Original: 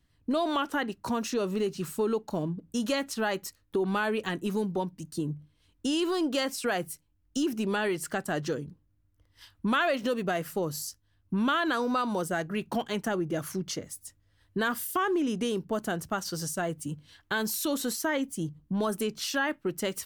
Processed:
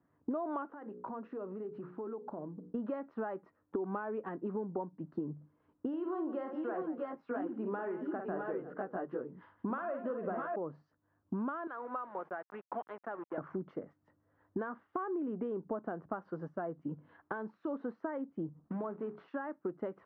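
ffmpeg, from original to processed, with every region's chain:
-filter_complex "[0:a]asettb=1/sr,asplit=3[a][b][c];[a]atrim=end=0.674[d];[b]atrim=start=0.67:end=2.73,asetpts=PTS-STARTPTS,afade=t=in:d=0.004:c=qsin,afade=t=out:st=2.056:d=0.004:c=qsin,bandreject=f=60:t=h:w=6,bandreject=f=120:t=h:w=6,bandreject=f=180:t=h:w=6,bandreject=f=240:t=h:w=6,bandreject=f=300:t=h:w=6,bandreject=f=360:t=h:w=6,bandreject=f=420:t=h:w=6,bandreject=f=480:t=h:w=6,bandreject=f=540:t=h:w=6,acompressor=threshold=-42dB:ratio=10:attack=3.2:release=140:knee=1:detection=peak[e];[c]atrim=start=2.726[f];[d][e]acrossfade=d=0.004:c1=hsin:c2=qsin[g];[g][f]acrossfade=d=0.004:c1=qsin:c2=hsin,asettb=1/sr,asplit=3[h][i][j];[h]atrim=end=5.884[k];[i]atrim=start=5.88:end=10.56,asetpts=PTS-STARTPTS,afade=t=in:d=0.004:c=qsin,afade=t=out:st=4.676:d=0.004:c=qsin,bass=f=250:g=-3,treble=f=4k:g=0,aecho=1:1:50|167|345|650|666:0.473|0.188|0.126|0.562|0.668,atrim=end_sample=206388[l];[j]atrim=start=10.556[m];[k][l]acrossfade=d=0.004:c1=hsin:c2=qsin[n];[n][m]acrossfade=d=0.004:c1=qsin:c2=hsin,asettb=1/sr,asplit=3[o][p][q];[o]atrim=end=11.674[r];[p]atrim=start=11.67:end=13.38,asetpts=PTS-STARTPTS,afade=t=in:d=0.004:c=qsin,afade=t=out:st=1.706:d=0.004:c=qsin,highpass=f=1.5k:p=1,aeval=exprs='val(0)*gte(abs(val(0)),0.00841)':c=same[s];[q]atrim=start=13.376[t];[r][s]acrossfade=d=0.004:c1=hsin:c2=qsin[u];[u][t]acrossfade=d=0.004:c1=qsin:c2=hsin,asettb=1/sr,asplit=3[v][w][x];[v]atrim=end=18.644[y];[w]atrim=start=18.64:end=19.28,asetpts=PTS-STARTPTS,afade=t=in:d=0.004:c=qsin,afade=t=out:st=0.636:d=0.004:c=qsin,acompressor=threshold=-35dB:ratio=2.5:attack=3.2:release=140:knee=1:detection=peak,acrusher=bits=3:mode=log:mix=0:aa=0.000001,bandreject=f=60:t=h:w=6,bandreject=f=120:t=h:w=6,bandreject=f=180:t=h:w=6,bandreject=f=240:t=h:w=6,bandreject=f=300:t=h:w=6,bandreject=f=360:t=h:w=6,bandreject=f=420:t=h:w=6,bandreject=f=480:t=h:w=6,bandreject=f=540:t=h:w=6[z];[x]atrim=start=19.276[aa];[y][z]acrossfade=d=0.004:c1=hsin:c2=qsin[ab];[ab][aa]acrossfade=d=0.004:c1=qsin:c2=hsin,highpass=240,acompressor=threshold=-40dB:ratio=6,lowpass=f=1.3k:w=0.5412,lowpass=f=1.3k:w=1.3066,volume=5.5dB"

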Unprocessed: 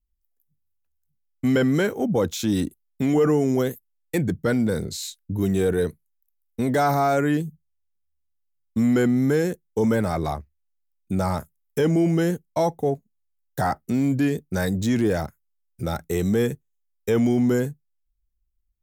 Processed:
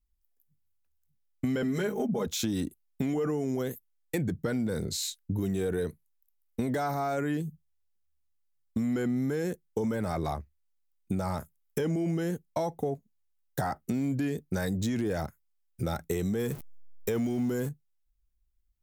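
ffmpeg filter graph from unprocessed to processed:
-filter_complex "[0:a]asettb=1/sr,asplit=3[a][b][c];[a]atrim=end=1.624[d];[b]atrim=start=1.62:end=2.27,asetpts=PTS-STARTPTS,afade=t=in:d=0.004:c=qsin,afade=t=out:st=0.646:d=0.004:c=qsin,bandreject=f=50:t=h:w=6,bandreject=f=100:t=h:w=6,bandreject=f=150:t=h:w=6,bandreject=f=200:t=h:w=6,bandreject=f=250:t=h:w=6,bandreject=f=300:t=h:w=6,bandreject=f=350:t=h:w=6,aecho=1:1:4.8:0.82,atrim=end_sample=28665[e];[c]atrim=start=2.266[f];[d][e]acrossfade=d=0.004:c1=hsin:c2=qsin[g];[g][f]acrossfade=d=0.004:c1=qsin:c2=hsin,asettb=1/sr,asplit=3[h][i][j];[h]atrim=end=16.394[k];[i]atrim=start=16.39:end=17.69,asetpts=PTS-STARTPTS,afade=t=in:d=0.004:c=qsin,afade=t=out:st=1.296:d=0.004:c=qsin,aeval=exprs='val(0)+0.5*0.0141*sgn(val(0))':c=same,highshelf=f=9.3k:g=6.5[l];[j]atrim=start=17.686[m];[k][l]acrossfade=d=0.004:c1=hsin:c2=qsin[n];[n][m]acrossfade=d=0.004:c1=qsin:c2=hsin,alimiter=limit=-15.5dB:level=0:latency=1,acompressor=threshold=-27dB:ratio=5"

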